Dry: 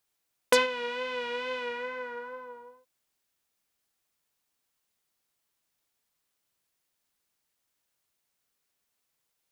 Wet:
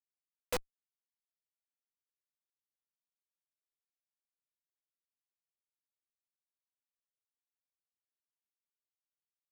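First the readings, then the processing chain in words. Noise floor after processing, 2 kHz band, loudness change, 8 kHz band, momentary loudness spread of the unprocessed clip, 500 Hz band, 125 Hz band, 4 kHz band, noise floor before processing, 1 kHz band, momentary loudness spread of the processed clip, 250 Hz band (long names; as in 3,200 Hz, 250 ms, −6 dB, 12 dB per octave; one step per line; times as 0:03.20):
below −85 dBFS, −20.5 dB, −9.5 dB, −10.0 dB, 18 LU, −16.5 dB, can't be measured, −16.5 dB, −80 dBFS, −17.5 dB, 0 LU, −13.0 dB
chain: RIAA equalisation recording
comparator with hysteresis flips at −19.5 dBFS
level +6 dB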